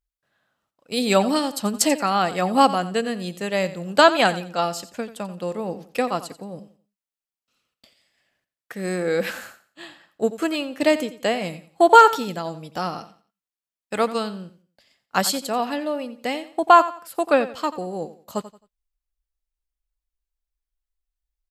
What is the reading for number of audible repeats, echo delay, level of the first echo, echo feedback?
2, 88 ms, -15.0 dB, 29%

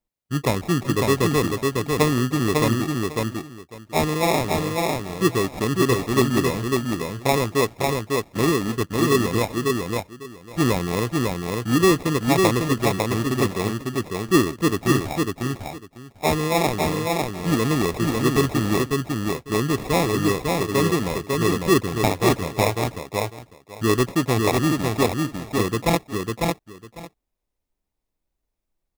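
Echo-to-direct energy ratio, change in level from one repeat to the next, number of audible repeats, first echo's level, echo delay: -3.0 dB, -15.5 dB, 2, -3.0 dB, 550 ms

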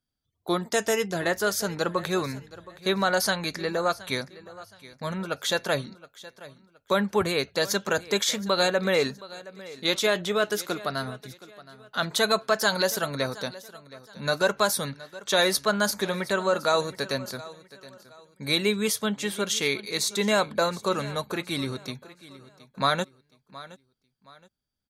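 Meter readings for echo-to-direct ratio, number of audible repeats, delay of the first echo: -18.0 dB, 2, 720 ms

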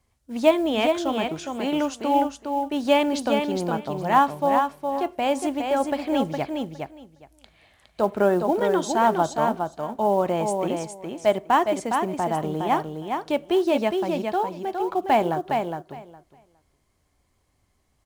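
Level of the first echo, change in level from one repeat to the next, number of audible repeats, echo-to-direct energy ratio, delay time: -5.0 dB, -16.5 dB, 2, -5.0 dB, 412 ms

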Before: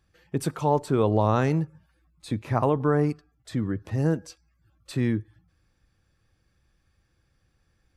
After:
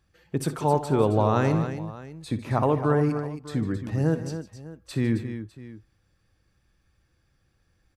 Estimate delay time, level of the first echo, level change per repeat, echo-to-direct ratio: 60 ms, -15.0 dB, no regular repeats, -7.0 dB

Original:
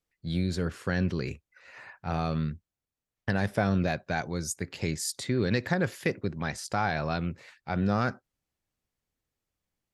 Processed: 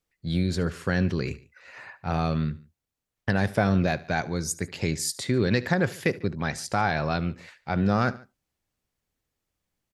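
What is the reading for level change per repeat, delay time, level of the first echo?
-4.5 dB, 73 ms, -20.0 dB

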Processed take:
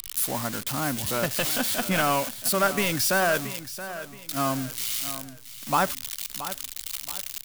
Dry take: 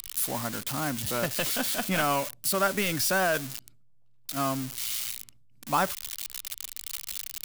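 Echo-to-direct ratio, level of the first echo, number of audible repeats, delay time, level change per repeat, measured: -12.5 dB, -13.0 dB, 3, 675 ms, -9.0 dB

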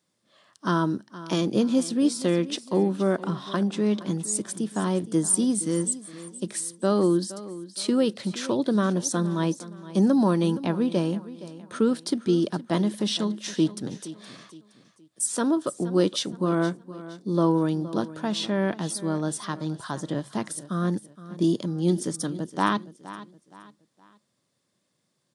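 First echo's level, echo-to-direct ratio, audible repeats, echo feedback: -16.0 dB, -15.5 dB, 3, 36%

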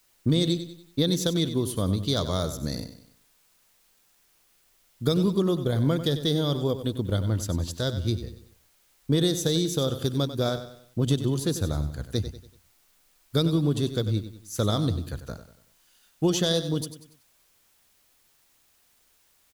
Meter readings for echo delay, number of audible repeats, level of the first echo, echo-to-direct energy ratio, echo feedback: 95 ms, 4, -11.5 dB, -10.5 dB, 41%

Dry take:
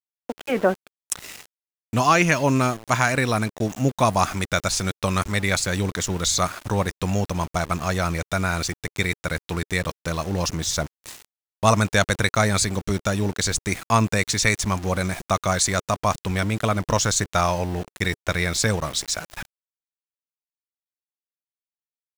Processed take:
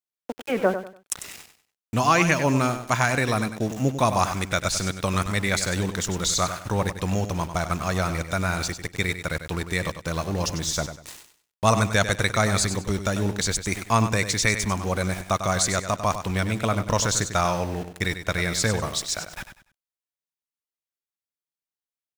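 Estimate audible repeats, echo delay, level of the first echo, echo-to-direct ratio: 3, 97 ms, -10.0 dB, -9.5 dB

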